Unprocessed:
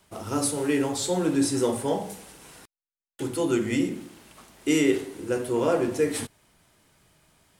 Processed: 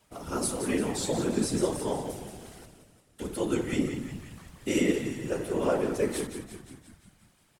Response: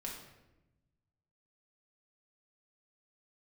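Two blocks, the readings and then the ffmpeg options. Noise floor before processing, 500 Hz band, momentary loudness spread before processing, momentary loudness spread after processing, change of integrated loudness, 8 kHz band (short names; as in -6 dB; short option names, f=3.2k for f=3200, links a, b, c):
under -85 dBFS, -3.5 dB, 10 LU, 16 LU, -4.0 dB, -3.5 dB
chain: -filter_complex "[0:a]asplit=8[a][b][c][d][e][f][g][h];[b]adelay=175,afreqshift=-48,volume=-9dB[i];[c]adelay=350,afreqshift=-96,volume=-13.6dB[j];[d]adelay=525,afreqshift=-144,volume=-18.2dB[k];[e]adelay=700,afreqshift=-192,volume=-22.7dB[l];[f]adelay=875,afreqshift=-240,volume=-27.3dB[m];[g]adelay=1050,afreqshift=-288,volume=-31.9dB[n];[h]adelay=1225,afreqshift=-336,volume=-36.5dB[o];[a][i][j][k][l][m][n][o]amix=inputs=8:normalize=0,afftfilt=real='hypot(re,im)*cos(2*PI*random(0))':imag='hypot(re,im)*sin(2*PI*random(1))':win_size=512:overlap=0.75,volume=1.5dB"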